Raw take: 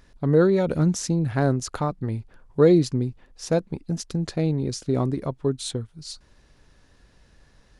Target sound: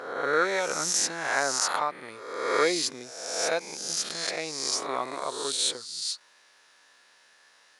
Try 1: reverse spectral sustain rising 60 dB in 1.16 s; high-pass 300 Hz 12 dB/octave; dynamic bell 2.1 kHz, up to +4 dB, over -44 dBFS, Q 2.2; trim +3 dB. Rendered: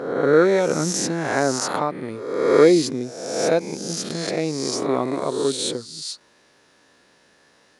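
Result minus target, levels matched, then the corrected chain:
250 Hz band +10.0 dB
reverse spectral sustain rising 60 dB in 1.16 s; high-pass 950 Hz 12 dB/octave; dynamic bell 2.1 kHz, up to +4 dB, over -44 dBFS, Q 2.2; trim +3 dB

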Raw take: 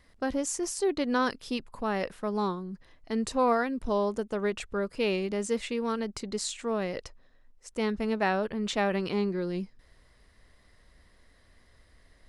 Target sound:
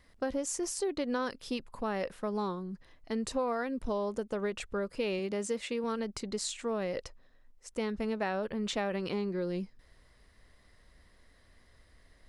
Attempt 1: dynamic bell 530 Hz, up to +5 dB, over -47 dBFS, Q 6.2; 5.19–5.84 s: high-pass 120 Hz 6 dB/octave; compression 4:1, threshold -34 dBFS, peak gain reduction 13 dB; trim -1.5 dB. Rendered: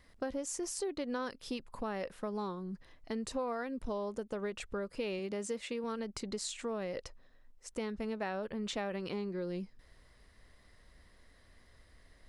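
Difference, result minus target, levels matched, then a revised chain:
compression: peak gain reduction +4.5 dB
dynamic bell 530 Hz, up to +5 dB, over -47 dBFS, Q 6.2; 5.19–5.84 s: high-pass 120 Hz 6 dB/octave; compression 4:1, threshold -28 dBFS, peak gain reduction 8.5 dB; trim -1.5 dB

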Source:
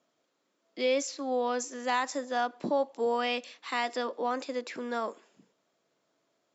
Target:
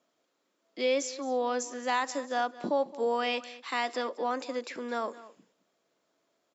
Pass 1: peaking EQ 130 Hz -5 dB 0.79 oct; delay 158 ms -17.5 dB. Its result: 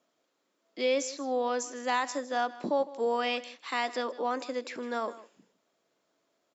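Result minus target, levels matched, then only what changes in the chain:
echo 59 ms early
change: delay 217 ms -17.5 dB

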